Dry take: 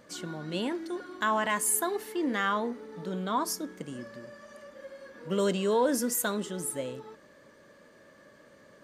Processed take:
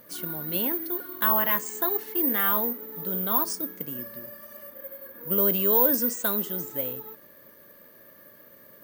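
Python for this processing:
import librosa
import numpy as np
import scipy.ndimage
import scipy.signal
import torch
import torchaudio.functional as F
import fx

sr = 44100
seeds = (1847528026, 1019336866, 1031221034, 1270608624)

y = fx.high_shelf(x, sr, hz=fx.line((4.71, 5000.0), (5.51, 2400.0)), db=-8.0, at=(4.71, 5.51), fade=0.02)
y = (np.kron(scipy.signal.resample_poly(y, 1, 3), np.eye(3)[0]) * 3)[:len(y)]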